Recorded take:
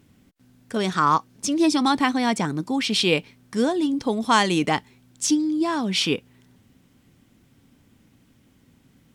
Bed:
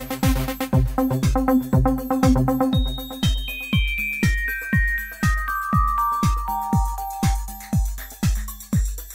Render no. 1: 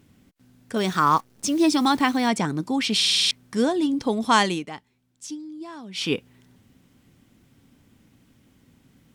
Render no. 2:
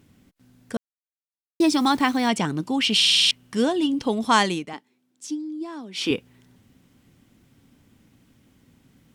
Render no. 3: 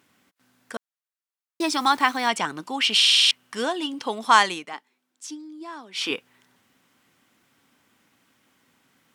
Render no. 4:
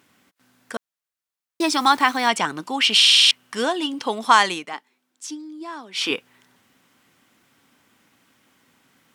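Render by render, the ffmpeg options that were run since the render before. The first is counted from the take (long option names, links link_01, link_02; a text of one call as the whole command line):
ffmpeg -i in.wav -filter_complex "[0:a]asettb=1/sr,asplit=3[link_01][link_02][link_03];[link_01]atrim=end=0.774[link_04];[link_02]atrim=start=0.77:end=2.28,asetpts=PTS-STARTPTS,afade=type=in:duration=0.004:curve=qsin,afade=type=out:start_time=1.506:duration=0.004:curve=qsin,acrusher=bits=8:dc=4:mix=0:aa=0.000001[link_05];[link_03]atrim=start=2.276[link_06];[link_04][link_05]acrossfade=duration=0.004:curve1=hsin:curve2=qsin[link_07];[link_07][link_06]acrossfade=duration=0.004:curve1=qsin:curve2=hsin,asplit=10[link_08][link_09][link_10][link_11][link_12][link_13][link_14][link_15][link_16][link_17];[link_08]atrim=end=3.012[link_18];[link_09]atrim=start=2.958:end=3.012[link_19];[link_10]atrim=start=2.958:end=3.012[link_20];[link_11]atrim=start=2.958:end=3.012[link_21];[link_12]atrim=start=2.958:end=3.012[link_22];[link_13]atrim=start=2.958:end=3.012[link_23];[link_14]atrim=start=2.958:end=3.012[link_24];[link_15]atrim=start=3.308:end=4.64,asetpts=PTS-STARTPTS,afade=type=out:start_time=1.122:duration=0.21:silence=0.188365[link_25];[link_16]atrim=start=4.64:end=5.93,asetpts=PTS-STARTPTS,volume=-14.5dB[link_26];[link_17]atrim=start=5.93,asetpts=PTS-STARTPTS,afade=type=in:duration=0.21:silence=0.188365[link_27];[link_18][link_19]acrossfade=duration=0.004:curve1=hsin:curve2=hsin[link_28];[link_28][link_20]acrossfade=duration=0.004:curve1=hsin:curve2=hsin[link_29];[link_29][link_21]acrossfade=duration=0.004:curve1=hsin:curve2=hsin[link_30];[link_30][link_22]acrossfade=duration=0.004:curve1=hsin:curve2=hsin[link_31];[link_31][link_23]acrossfade=duration=0.004:curve1=hsin:curve2=hsin[link_32];[link_32][link_24]acrossfade=duration=0.004:curve1=hsin:curve2=hsin[link_33];[link_25][link_26][link_27]concat=n=3:v=0:a=1[link_34];[link_33][link_34]acrossfade=duration=0.004:curve1=hsin:curve2=hsin" out.wav
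ffmpeg -i in.wav -filter_complex "[0:a]asettb=1/sr,asplit=3[link_01][link_02][link_03];[link_01]atrim=end=2.294[link_04];[link_02]atrim=start=2.29:end=4.22,asetpts=PTS-STARTPTS,afade=type=in:duration=0.004:curve=qsin,afade=type=out:start_time=1.926:duration=0.004:curve=qsin,equalizer=frequency=2900:width=6.4:gain=11[link_05];[link_03]atrim=start=4.216[link_06];[link_04][link_05]acrossfade=duration=0.004:curve1=hsin:curve2=qsin[link_07];[link_07][link_06]acrossfade=duration=0.004:curve1=qsin:curve2=hsin,asettb=1/sr,asplit=3[link_08][link_09][link_10];[link_08]atrim=end=4.734[link_11];[link_09]atrim=start=4.73:end=6.11,asetpts=PTS-STARTPTS,afade=type=in:duration=0.004:curve=qsin,afade=type=out:start_time=1.376:duration=0.004:curve=qsin,highpass=frequency=280:width_type=q:width=1.8[link_12];[link_10]atrim=start=6.106[link_13];[link_11][link_12]acrossfade=duration=0.004:curve1=hsin:curve2=qsin[link_14];[link_14][link_13]acrossfade=duration=0.004:curve1=qsin:curve2=hsin,asplit=3[link_15][link_16][link_17];[link_15]atrim=end=0.77,asetpts=PTS-STARTPTS,afade=type=out:start_time=0.766:duration=0.004:curve=hsin[link_18];[link_16]atrim=start=0.77:end=1.6,asetpts=PTS-STARTPTS,volume=0[link_19];[link_17]atrim=start=1.6,asetpts=PTS-STARTPTS,afade=type=in:duration=0.004:curve=hsin[link_20];[link_18][link_19][link_20]concat=n=3:v=0:a=1" out.wav
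ffmpeg -i in.wav -af "highpass=frequency=810:poles=1,equalizer=frequency=1200:width_type=o:width=1.6:gain=6" out.wav
ffmpeg -i in.wav -af "volume=3.5dB,alimiter=limit=-3dB:level=0:latency=1" out.wav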